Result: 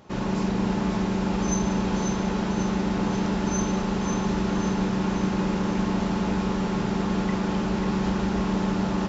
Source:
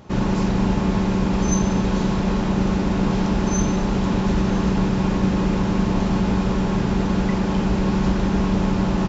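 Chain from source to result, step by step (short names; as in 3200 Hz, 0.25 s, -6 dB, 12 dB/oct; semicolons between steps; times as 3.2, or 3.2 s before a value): low shelf 170 Hz -8.5 dB; split-band echo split 660 Hz, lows 0.152 s, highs 0.541 s, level -6 dB; gain -4 dB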